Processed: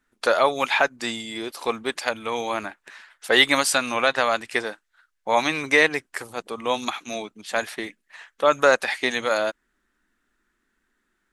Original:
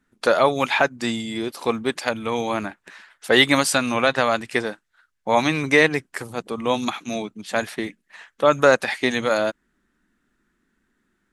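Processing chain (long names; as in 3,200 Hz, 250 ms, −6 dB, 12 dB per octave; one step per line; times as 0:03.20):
parametric band 140 Hz −11.5 dB 2.3 octaves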